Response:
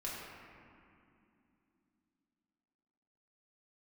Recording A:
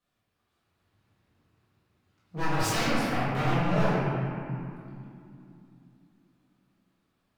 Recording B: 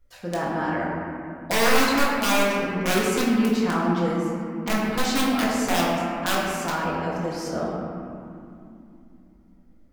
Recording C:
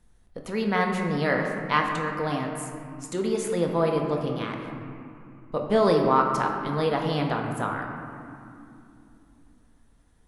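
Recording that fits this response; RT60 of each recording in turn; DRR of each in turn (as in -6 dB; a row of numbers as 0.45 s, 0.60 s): B; 2.7 s, 2.7 s, 2.7 s; -12.5 dB, -6.5 dB, 1.0 dB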